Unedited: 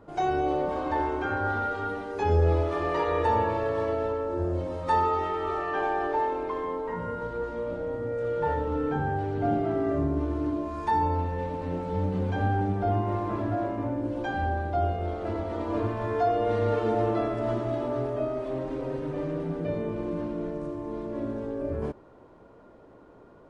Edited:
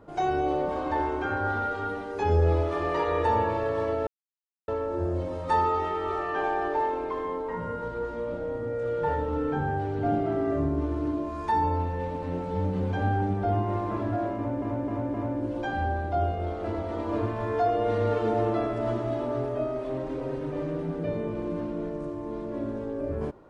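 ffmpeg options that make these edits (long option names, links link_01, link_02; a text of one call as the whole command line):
ffmpeg -i in.wav -filter_complex "[0:a]asplit=5[link_01][link_02][link_03][link_04][link_05];[link_01]atrim=end=4.07,asetpts=PTS-STARTPTS,afade=type=out:start_time=4.066:duration=0.004:curve=hsin,apad=pad_dur=0.61[link_06];[link_02]atrim=start=4.07:end=14.012,asetpts=PTS-STARTPTS,afade=type=in:duration=0.004:curve=hsin[link_07];[link_03]atrim=start=13.748:end=14.012[link_08];[link_04]atrim=start=13.748:end=14.012[link_09];[link_05]atrim=start=13.748[link_10];[link_06][link_07]concat=n=2:v=0:a=1[link_11];[link_11][link_08]acrossfade=duration=0.004:curve1=hsin:curve2=hsin[link_12];[link_12][link_09]acrossfade=duration=0.004:curve1=hsin:curve2=hsin[link_13];[link_13][link_10]acrossfade=duration=0.004:curve1=hsin:curve2=hsin" out.wav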